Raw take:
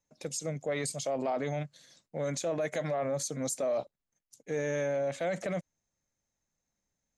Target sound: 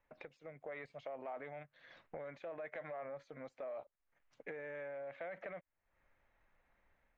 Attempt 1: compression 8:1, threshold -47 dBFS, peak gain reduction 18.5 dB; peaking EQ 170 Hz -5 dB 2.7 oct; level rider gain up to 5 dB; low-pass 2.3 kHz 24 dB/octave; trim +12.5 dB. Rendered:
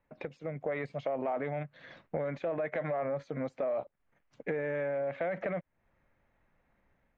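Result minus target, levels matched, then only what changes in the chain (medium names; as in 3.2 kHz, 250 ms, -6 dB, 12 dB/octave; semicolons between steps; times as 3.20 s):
compression: peak gain reduction -8.5 dB; 125 Hz band +6.5 dB
change: compression 8:1, threshold -56.5 dBFS, peak gain reduction 26.5 dB; change: peaking EQ 170 Hz -16 dB 2.7 oct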